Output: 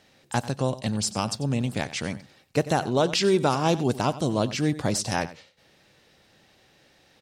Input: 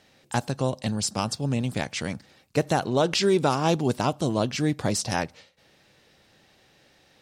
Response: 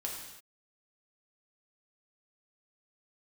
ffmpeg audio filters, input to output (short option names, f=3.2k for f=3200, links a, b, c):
-af "aecho=1:1:93:0.158"